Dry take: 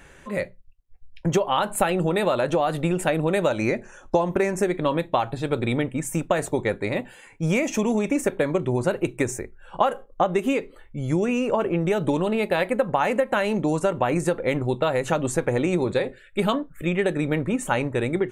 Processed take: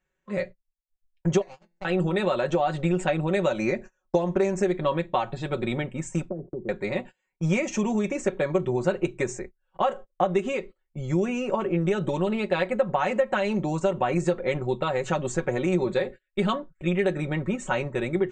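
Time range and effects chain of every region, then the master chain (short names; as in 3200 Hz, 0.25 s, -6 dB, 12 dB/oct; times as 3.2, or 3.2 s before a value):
1.41–1.85 median filter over 41 samples + resonator 170 Hz, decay 0.48 s, mix 80%
6.29–6.69 ladder low-pass 470 Hz, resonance 30% + three-band squash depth 100%
whole clip: steep low-pass 8000 Hz 72 dB/oct; gate -35 dBFS, range -28 dB; comb 5.4 ms, depth 69%; gain -4.5 dB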